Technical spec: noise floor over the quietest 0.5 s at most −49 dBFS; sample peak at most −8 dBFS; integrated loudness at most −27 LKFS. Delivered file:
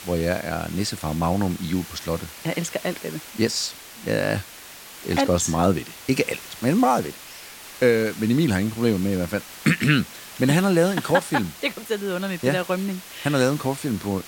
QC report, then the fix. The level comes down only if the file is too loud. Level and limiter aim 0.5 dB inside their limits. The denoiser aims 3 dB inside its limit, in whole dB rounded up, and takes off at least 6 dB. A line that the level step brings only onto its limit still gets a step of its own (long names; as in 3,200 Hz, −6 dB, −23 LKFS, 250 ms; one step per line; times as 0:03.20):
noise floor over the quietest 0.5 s −42 dBFS: out of spec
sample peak −5.0 dBFS: out of spec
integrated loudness −23.5 LKFS: out of spec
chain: broadband denoise 6 dB, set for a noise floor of −42 dBFS
level −4 dB